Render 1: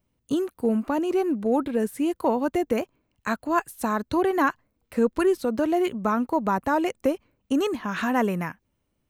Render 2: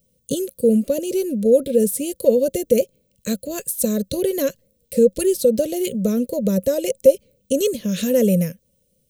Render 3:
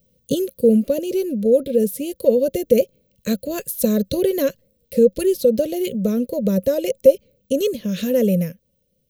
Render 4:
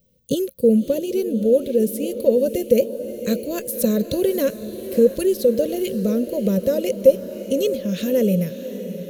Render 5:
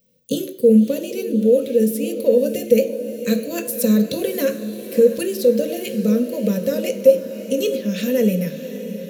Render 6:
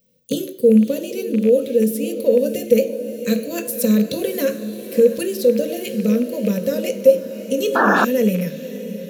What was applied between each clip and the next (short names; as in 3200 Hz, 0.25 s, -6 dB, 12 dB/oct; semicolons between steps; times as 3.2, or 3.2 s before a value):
EQ curve 110 Hz 0 dB, 190 Hz +8 dB, 320 Hz -9 dB, 540 Hz +14 dB, 800 Hz -29 dB, 1200 Hz -24 dB, 3400 Hz +4 dB, 9300 Hz +14 dB; in parallel at -1 dB: limiter -13.5 dBFS, peak gain reduction 11.5 dB; on the sum: gain -1.5 dB
bell 8400 Hz -11 dB 0.76 oct; vocal rider within 5 dB 2 s
diffused feedback echo 0.6 s, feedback 59%, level -12 dB; gain -1 dB
reverb RT60 0.80 s, pre-delay 3 ms, DRR 5 dB; gain +1.5 dB
rattling part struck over -20 dBFS, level -25 dBFS; painted sound noise, 7.75–8.05, 210–1800 Hz -15 dBFS